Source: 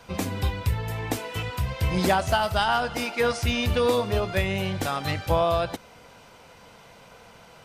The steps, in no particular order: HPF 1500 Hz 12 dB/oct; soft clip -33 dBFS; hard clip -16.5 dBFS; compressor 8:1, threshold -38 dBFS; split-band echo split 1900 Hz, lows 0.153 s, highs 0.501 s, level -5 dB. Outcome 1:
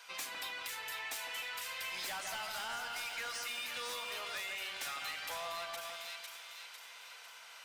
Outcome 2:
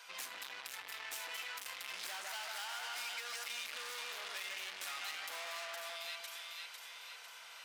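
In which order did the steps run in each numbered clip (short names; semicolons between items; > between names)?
hard clip > HPF > soft clip > split-band echo > compressor; hard clip > split-band echo > soft clip > HPF > compressor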